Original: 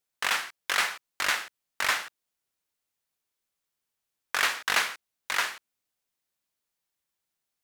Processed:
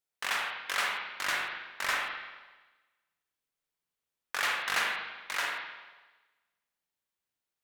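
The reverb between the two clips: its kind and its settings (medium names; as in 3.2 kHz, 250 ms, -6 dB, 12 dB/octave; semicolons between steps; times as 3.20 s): spring tank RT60 1.2 s, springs 41/48 ms, chirp 30 ms, DRR -1 dB; trim -6.5 dB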